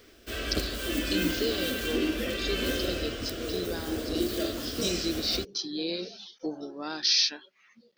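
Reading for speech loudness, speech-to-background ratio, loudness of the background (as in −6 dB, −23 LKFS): −31.5 LKFS, 0.0 dB, −31.5 LKFS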